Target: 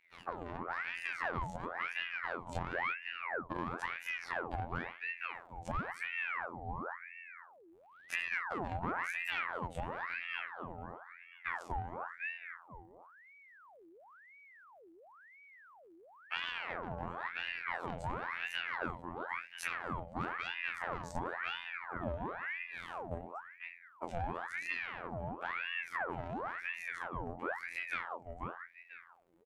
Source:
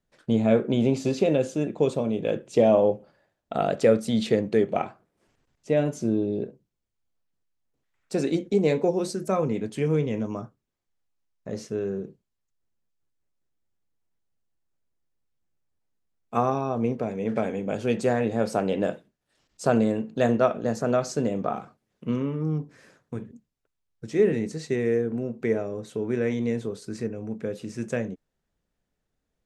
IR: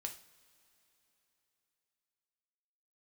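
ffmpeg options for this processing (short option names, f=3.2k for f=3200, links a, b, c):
-filter_complex "[0:a]equalizer=f=5.3k:w=1.7:g=-10,asplit=2[a][b];[b]adelay=17,volume=-3.5dB[c];[a][c]amix=inputs=2:normalize=0,asplit=2[d][e];[e]adelay=490,lowpass=f=1.4k:p=1,volume=-18.5dB,asplit=2[f][g];[g]adelay=490,lowpass=f=1.4k:p=1,volume=0.23[h];[d][f][h]amix=inputs=3:normalize=0,asplit=2[i][j];[j]alimiter=limit=-13.5dB:level=0:latency=1,volume=1dB[k];[i][k]amix=inputs=2:normalize=0,acontrast=79,asoftclip=type=tanh:threshold=-9dB,bandreject=f=50:t=h:w=6,bandreject=f=100:t=h:w=6,bandreject=f=150:t=h:w=6,bandreject=f=200:t=h:w=6,bandreject=f=250:t=h:w=6,bandreject=f=300:t=h:w=6,bandreject=f=350:t=h:w=6,bandreject=f=400:t=h:w=6,acompressor=threshold=-28dB:ratio=16,afftfilt=real='hypot(re,im)*cos(PI*b)':imag='0':win_size=2048:overlap=0.75,highshelf=f=2.1k:g=-8.5,aeval=exprs='val(0)*sin(2*PI*1300*n/s+1300*0.75/0.97*sin(2*PI*0.97*n/s))':c=same,volume=-1dB"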